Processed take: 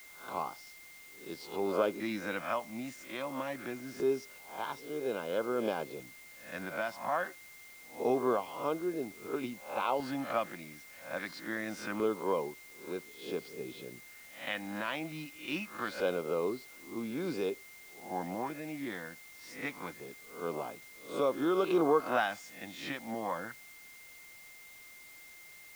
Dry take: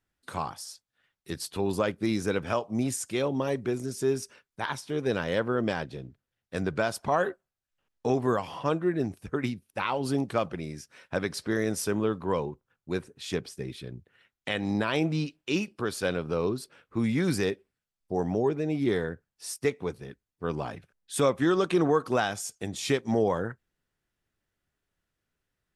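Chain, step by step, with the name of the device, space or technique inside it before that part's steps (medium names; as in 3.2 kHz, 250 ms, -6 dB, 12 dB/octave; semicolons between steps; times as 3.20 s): reverse spectral sustain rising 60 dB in 0.41 s; shortwave radio (band-pass 290–3000 Hz; tremolo 0.5 Hz, depth 40%; LFO notch square 0.25 Hz 420–1900 Hz; whistle 2.1 kHz -51 dBFS; white noise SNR 20 dB); trim -2 dB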